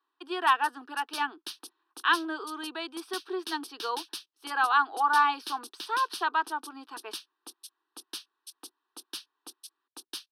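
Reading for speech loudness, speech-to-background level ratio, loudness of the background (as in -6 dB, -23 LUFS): -29.0 LUFS, 14.5 dB, -43.5 LUFS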